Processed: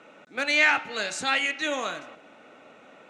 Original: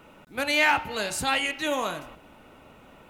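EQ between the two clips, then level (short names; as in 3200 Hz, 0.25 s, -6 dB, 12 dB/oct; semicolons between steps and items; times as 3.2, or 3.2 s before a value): dynamic EQ 580 Hz, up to -5 dB, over -39 dBFS, Q 0.93; speaker cabinet 320–6900 Hz, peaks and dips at 370 Hz -4 dB, 960 Hz -9 dB, 3000 Hz -5 dB, 4800 Hz -6 dB; +4.0 dB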